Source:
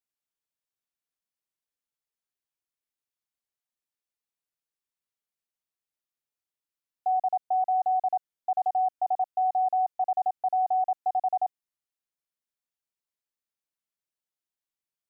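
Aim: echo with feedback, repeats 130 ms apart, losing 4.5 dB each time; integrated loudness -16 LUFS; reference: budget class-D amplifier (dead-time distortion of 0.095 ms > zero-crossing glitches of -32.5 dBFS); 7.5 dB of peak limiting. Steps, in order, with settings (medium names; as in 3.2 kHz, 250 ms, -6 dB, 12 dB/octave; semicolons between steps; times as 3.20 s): peak limiter -28 dBFS; feedback delay 130 ms, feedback 60%, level -4.5 dB; dead-time distortion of 0.095 ms; zero-crossing glitches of -32.5 dBFS; trim +14 dB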